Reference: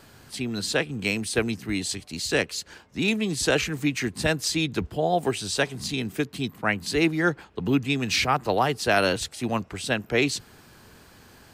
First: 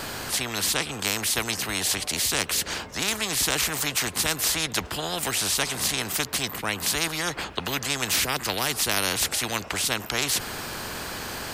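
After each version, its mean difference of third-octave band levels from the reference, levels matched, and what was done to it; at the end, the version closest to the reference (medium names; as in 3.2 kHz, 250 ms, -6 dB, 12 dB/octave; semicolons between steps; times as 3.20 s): 12.5 dB: spectrum-flattening compressor 4:1; trim +2.5 dB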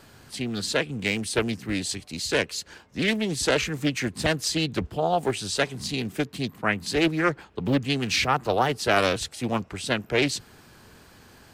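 1.5 dB: loudspeaker Doppler distortion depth 0.54 ms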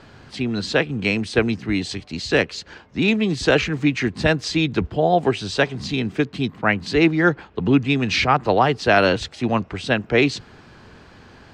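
4.0 dB: distance through air 150 m; trim +6.5 dB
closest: second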